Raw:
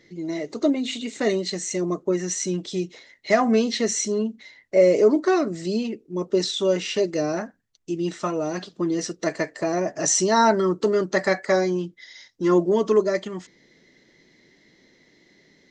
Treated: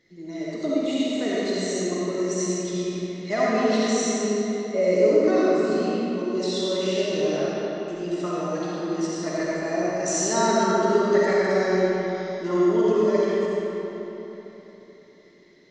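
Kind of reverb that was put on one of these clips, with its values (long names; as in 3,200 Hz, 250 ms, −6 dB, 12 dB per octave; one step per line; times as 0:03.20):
comb and all-pass reverb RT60 3.7 s, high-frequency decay 0.7×, pre-delay 25 ms, DRR −8 dB
level −9 dB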